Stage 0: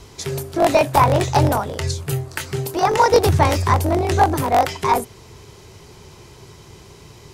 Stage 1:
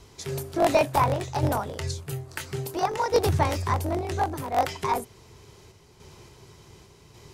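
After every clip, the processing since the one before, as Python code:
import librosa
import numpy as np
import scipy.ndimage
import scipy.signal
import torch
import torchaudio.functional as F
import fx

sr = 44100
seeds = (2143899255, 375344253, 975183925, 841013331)

y = fx.tremolo_random(x, sr, seeds[0], hz=3.5, depth_pct=55)
y = y * 10.0 ** (-5.5 / 20.0)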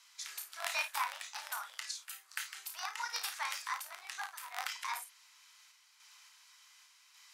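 y = scipy.signal.sosfilt(scipy.signal.cheby2(4, 70, 280.0, 'highpass', fs=sr, output='sos'), x)
y = fx.room_early_taps(y, sr, ms=(33, 53), db=(-9.5, -11.5))
y = y * 10.0 ** (-4.5 / 20.0)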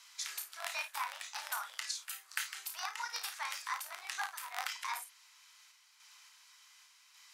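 y = fx.rider(x, sr, range_db=10, speed_s=0.5)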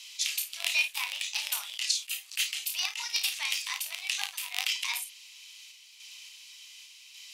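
y = fx.high_shelf_res(x, sr, hz=2000.0, db=10.5, q=3.0)
y = fx.attack_slew(y, sr, db_per_s=430.0)
y = y * 10.0 ** (-1.0 / 20.0)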